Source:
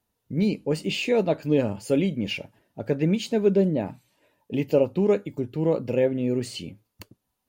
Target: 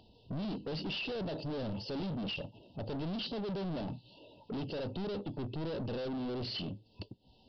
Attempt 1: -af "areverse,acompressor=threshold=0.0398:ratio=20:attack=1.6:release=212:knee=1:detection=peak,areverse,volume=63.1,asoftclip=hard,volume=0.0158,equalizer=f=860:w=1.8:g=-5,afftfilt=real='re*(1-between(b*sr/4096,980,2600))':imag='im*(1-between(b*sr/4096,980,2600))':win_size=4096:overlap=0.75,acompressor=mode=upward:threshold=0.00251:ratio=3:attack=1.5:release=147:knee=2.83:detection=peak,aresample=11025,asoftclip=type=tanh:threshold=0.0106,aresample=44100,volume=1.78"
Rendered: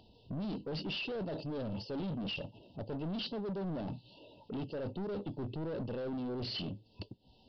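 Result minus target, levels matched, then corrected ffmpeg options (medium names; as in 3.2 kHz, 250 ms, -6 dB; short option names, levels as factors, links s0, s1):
compression: peak gain reduction +11 dB
-af "areverse,acompressor=threshold=0.15:ratio=20:attack=1.6:release=212:knee=1:detection=peak,areverse,volume=63.1,asoftclip=hard,volume=0.0158,equalizer=f=860:w=1.8:g=-5,afftfilt=real='re*(1-between(b*sr/4096,980,2600))':imag='im*(1-between(b*sr/4096,980,2600))':win_size=4096:overlap=0.75,acompressor=mode=upward:threshold=0.00251:ratio=3:attack=1.5:release=147:knee=2.83:detection=peak,aresample=11025,asoftclip=type=tanh:threshold=0.0106,aresample=44100,volume=1.78"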